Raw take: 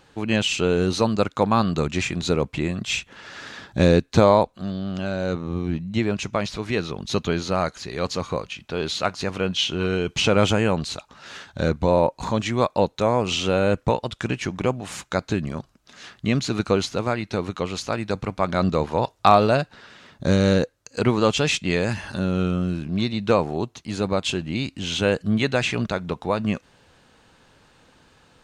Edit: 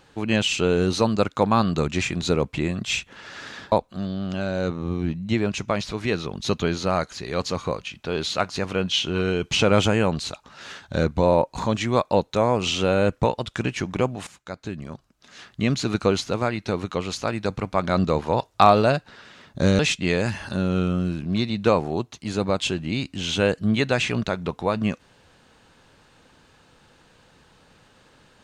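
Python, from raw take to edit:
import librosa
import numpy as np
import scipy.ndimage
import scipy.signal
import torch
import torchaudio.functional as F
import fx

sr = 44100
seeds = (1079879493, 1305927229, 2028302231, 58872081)

y = fx.edit(x, sr, fx.cut(start_s=3.72, length_s=0.65),
    fx.fade_in_from(start_s=14.92, length_s=1.52, floor_db=-16.5),
    fx.cut(start_s=20.44, length_s=0.98), tone=tone)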